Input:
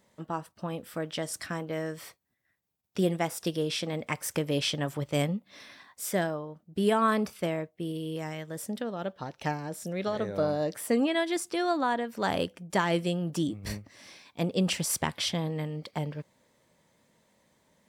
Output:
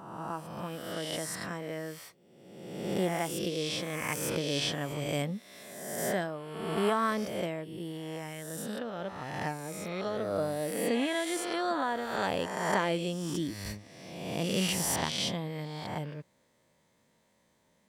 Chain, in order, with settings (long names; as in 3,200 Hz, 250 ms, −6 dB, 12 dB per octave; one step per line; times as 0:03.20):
peak hold with a rise ahead of every peak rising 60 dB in 1.31 s
0:03.42–0:04.04: notch filter 940 Hz, Q 8.1
level −5.5 dB